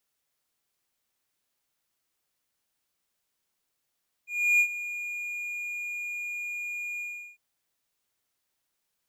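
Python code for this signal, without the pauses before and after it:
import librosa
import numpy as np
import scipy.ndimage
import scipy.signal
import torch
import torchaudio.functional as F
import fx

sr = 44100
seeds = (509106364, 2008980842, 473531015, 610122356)

y = fx.adsr_tone(sr, wave='triangle', hz=2430.0, attack_ms=327.0, decay_ms=75.0, sustain_db=-14.5, held_s=2.73, release_ms=372.0, level_db=-15.5)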